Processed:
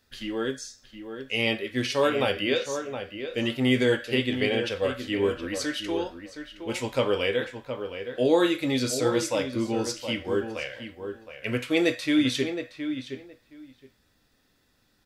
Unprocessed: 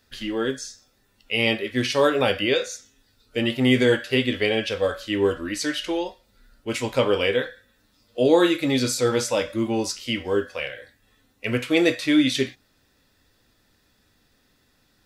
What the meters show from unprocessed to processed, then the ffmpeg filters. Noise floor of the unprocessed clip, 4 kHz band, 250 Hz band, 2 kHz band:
-65 dBFS, -4.0 dB, -3.5 dB, -3.5 dB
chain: -filter_complex "[0:a]asplit=2[s0][s1];[s1]adelay=718,lowpass=f=2400:p=1,volume=0.376,asplit=2[s2][s3];[s3]adelay=718,lowpass=f=2400:p=1,volume=0.16[s4];[s0][s2][s4]amix=inputs=3:normalize=0,volume=0.631"

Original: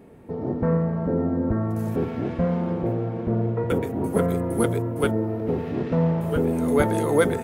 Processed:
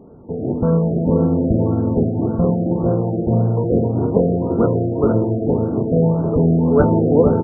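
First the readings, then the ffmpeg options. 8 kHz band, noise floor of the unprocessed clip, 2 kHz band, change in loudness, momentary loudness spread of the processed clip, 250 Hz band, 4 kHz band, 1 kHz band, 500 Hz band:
under -40 dB, -31 dBFS, no reading, +7.0 dB, 5 LU, +7.0 dB, under -40 dB, +3.5 dB, +6.5 dB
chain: -filter_complex "[0:a]tiltshelf=f=1400:g=4.5,asplit=2[s0][s1];[s1]adelay=466,lowpass=f=2000:p=1,volume=0.668,asplit=2[s2][s3];[s3]adelay=466,lowpass=f=2000:p=1,volume=0.41,asplit=2[s4][s5];[s5]adelay=466,lowpass=f=2000:p=1,volume=0.41,asplit=2[s6][s7];[s7]adelay=466,lowpass=f=2000:p=1,volume=0.41,asplit=2[s8][s9];[s9]adelay=466,lowpass=f=2000:p=1,volume=0.41[s10];[s0][s2][s4][s6][s8][s10]amix=inputs=6:normalize=0,afftfilt=real='re*lt(b*sr/1024,760*pow(1600/760,0.5+0.5*sin(2*PI*1.8*pts/sr)))':imag='im*lt(b*sr/1024,760*pow(1600/760,0.5+0.5*sin(2*PI*1.8*pts/sr)))':win_size=1024:overlap=0.75,volume=1.19"

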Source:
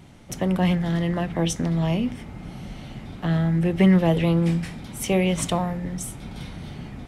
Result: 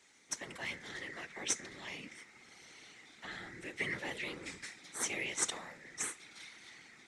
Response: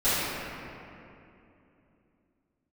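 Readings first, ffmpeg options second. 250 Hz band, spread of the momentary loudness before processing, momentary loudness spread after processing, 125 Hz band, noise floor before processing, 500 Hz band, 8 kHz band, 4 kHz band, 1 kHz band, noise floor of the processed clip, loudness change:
-29.0 dB, 19 LU, 18 LU, -34.0 dB, -40 dBFS, -22.0 dB, -3.0 dB, -8.5 dB, -17.5 dB, -60 dBFS, -17.0 dB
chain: -filter_complex "[0:a]aderivative,asplit=2[s0][s1];[s1]acrusher=samples=12:mix=1:aa=0.000001:lfo=1:lforange=12:lforate=0.43,volume=0.282[s2];[s0][s2]amix=inputs=2:normalize=0,highpass=240,equalizer=f=310:t=q:w=4:g=4,equalizer=f=630:t=q:w=4:g=-10,equalizer=f=1000:t=q:w=4:g=-5,equalizer=f=2000:t=q:w=4:g=7,equalizer=f=3000:t=q:w=4:g=-7,equalizer=f=4800:t=q:w=4:g=-4,lowpass=f=7500:w=0.5412,lowpass=f=7500:w=1.3066,afftfilt=real='hypot(re,im)*cos(2*PI*random(0))':imag='hypot(re,im)*sin(2*PI*random(1))':win_size=512:overlap=0.75,volume=2.37"

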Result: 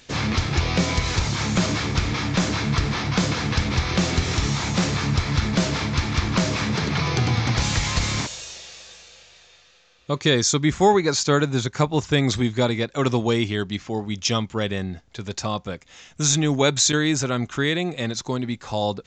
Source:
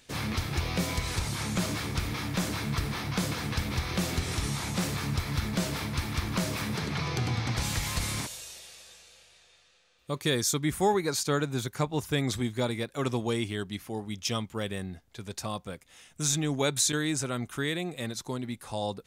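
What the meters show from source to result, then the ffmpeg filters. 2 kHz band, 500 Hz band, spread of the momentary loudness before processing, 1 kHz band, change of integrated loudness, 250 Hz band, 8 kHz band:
+8.5 dB, +8.5 dB, 10 LU, +8.5 dB, +8.0 dB, +8.5 dB, +6.5 dB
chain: -af "aresample=16000,aresample=44100,volume=2.66"

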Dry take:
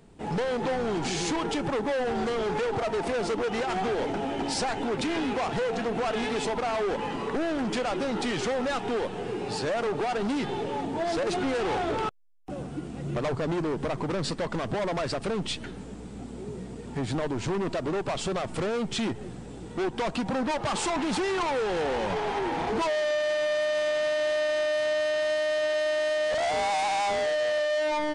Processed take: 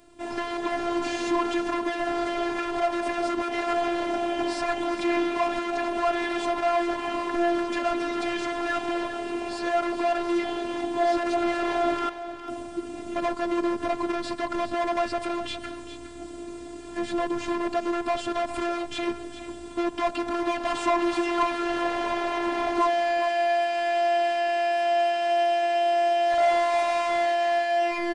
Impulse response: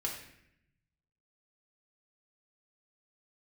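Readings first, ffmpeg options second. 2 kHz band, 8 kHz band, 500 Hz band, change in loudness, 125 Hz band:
+2.0 dB, -4.5 dB, +1.0 dB, +2.0 dB, -15.0 dB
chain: -filter_complex "[0:a]acrossover=split=2700[s0][s1];[s1]acompressor=threshold=0.00562:ratio=4:attack=1:release=60[s2];[s0][s2]amix=inputs=2:normalize=0,equalizer=f=390:w=4.8:g=-6.5,asplit=2[s3][s4];[s4]aecho=0:1:409:0.266[s5];[s3][s5]amix=inputs=2:normalize=0,afftfilt=real='hypot(re,im)*cos(PI*b)':imag='0':win_size=512:overlap=0.75,lowshelf=f=83:g=-9,volume=2.37"

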